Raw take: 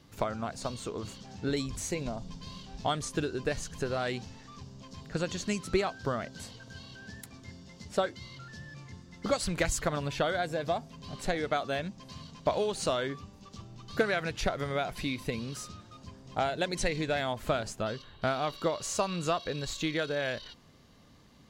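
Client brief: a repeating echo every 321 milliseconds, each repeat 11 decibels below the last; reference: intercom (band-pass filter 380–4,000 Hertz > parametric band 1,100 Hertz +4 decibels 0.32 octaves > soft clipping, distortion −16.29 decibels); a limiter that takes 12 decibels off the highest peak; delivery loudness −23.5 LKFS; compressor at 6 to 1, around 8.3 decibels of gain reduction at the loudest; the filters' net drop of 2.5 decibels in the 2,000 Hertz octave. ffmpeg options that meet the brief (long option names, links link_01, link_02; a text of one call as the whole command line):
ffmpeg -i in.wav -af "equalizer=frequency=2000:width_type=o:gain=-3.5,acompressor=threshold=-31dB:ratio=6,alimiter=level_in=7dB:limit=-24dB:level=0:latency=1,volume=-7dB,highpass=380,lowpass=4000,equalizer=frequency=1100:width_type=o:width=0.32:gain=4,aecho=1:1:321|642|963:0.282|0.0789|0.0221,asoftclip=threshold=-34.5dB,volume=22.5dB" out.wav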